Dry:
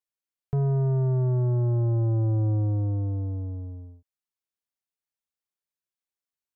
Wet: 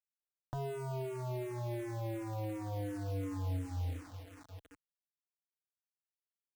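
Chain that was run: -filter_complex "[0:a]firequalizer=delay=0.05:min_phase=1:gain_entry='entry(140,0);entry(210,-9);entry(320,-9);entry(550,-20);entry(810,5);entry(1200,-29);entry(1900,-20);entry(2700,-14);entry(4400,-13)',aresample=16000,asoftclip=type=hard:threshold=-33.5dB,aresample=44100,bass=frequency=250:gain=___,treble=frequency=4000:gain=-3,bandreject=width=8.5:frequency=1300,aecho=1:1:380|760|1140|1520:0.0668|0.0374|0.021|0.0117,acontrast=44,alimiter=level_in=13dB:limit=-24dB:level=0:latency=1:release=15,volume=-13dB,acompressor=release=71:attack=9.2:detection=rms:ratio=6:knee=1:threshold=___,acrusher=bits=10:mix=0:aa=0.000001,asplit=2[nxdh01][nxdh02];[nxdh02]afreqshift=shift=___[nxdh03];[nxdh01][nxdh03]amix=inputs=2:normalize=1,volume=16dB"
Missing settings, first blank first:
-11, -49dB, -2.8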